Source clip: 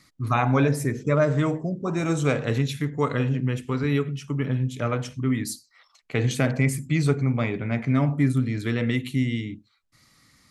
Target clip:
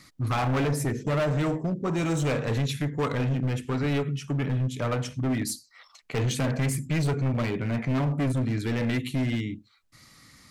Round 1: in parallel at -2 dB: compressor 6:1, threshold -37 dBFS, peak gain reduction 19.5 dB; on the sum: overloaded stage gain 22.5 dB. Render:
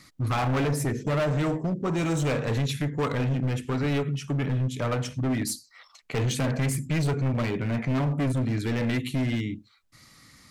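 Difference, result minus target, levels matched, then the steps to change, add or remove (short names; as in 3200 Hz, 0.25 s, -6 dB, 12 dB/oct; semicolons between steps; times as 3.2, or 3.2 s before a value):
compressor: peak gain reduction -8 dB
change: compressor 6:1, threshold -46.5 dBFS, peak gain reduction 27.5 dB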